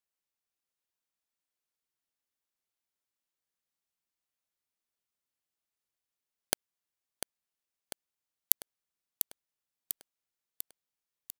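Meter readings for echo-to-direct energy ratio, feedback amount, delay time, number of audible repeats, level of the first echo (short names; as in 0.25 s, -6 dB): -7.5 dB, 57%, 0.696 s, 6, -9.0 dB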